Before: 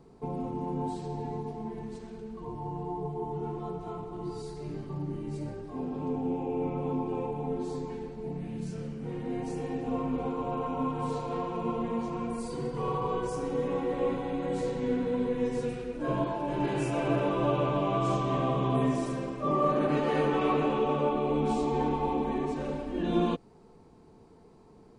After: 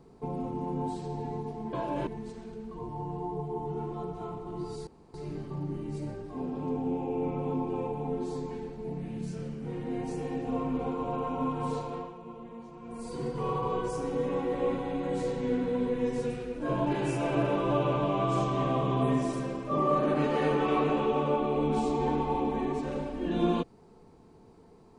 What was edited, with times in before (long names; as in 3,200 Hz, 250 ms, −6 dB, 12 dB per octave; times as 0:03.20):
0:04.53: splice in room tone 0.27 s
0:11.15–0:12.62: duck −13 dB, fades 0.41 s linear
0:16.25–0:16.59: move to 0:01.73